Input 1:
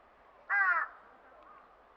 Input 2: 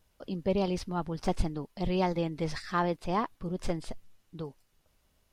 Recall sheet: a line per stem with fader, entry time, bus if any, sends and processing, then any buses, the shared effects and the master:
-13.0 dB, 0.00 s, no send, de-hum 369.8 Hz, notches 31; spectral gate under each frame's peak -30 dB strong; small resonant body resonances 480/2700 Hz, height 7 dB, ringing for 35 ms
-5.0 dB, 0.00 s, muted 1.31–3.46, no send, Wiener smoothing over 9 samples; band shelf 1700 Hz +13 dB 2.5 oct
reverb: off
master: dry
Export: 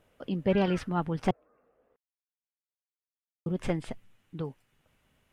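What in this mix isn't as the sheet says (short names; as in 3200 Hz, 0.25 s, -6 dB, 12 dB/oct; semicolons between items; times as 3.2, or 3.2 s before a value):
stem 2: missing Wiener smoothing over 9 samples; master: extra ten-band EQ 125 Hz +10 dB, 250 Hz +7 dB, 500 Hz +7 dB, 1000 Hz -7 dB, 4000 Hz -6 dB, 8000 Hz +4 dB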